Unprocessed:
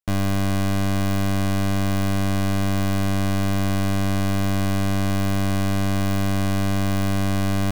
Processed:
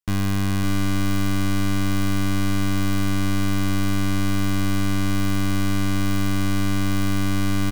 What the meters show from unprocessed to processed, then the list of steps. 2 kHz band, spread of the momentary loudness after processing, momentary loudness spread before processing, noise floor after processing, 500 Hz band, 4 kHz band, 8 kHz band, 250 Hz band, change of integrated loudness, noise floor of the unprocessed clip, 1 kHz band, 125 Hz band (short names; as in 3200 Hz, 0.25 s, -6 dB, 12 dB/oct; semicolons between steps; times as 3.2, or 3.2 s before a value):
+1.0 dB, 0 LU, 0 LU, -21 dBFS, -6.0 dB, +1.0 dB, +1.0 dB, +0.5 dB, -0.5 dB, -20 dBFS, -2.0 dB, -1.0 dB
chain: bell 620 Hz -14 dB 0.39 oct; echo 0.559 s -5.5 dB